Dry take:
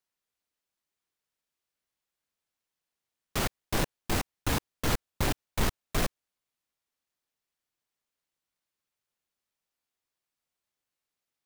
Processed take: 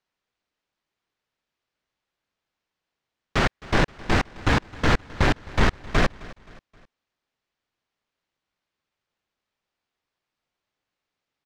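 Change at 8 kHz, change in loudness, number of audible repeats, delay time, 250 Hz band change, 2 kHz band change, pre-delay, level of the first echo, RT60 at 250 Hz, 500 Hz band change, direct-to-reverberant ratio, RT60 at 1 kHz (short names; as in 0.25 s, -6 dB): -3.5 dB, +8.0 dB, 3, 0.263 s, +8.5 dB, +11.0 dB, none, -20.5 dB, none, +8.5 dB, none, none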